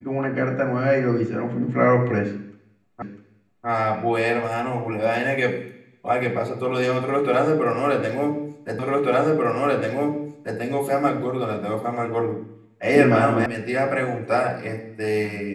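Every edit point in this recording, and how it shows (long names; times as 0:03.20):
0:03.02: the same again, the last 0.65 s
0:08.79: the same again, the last 1.79 s
0:13.46: cut off before it has died away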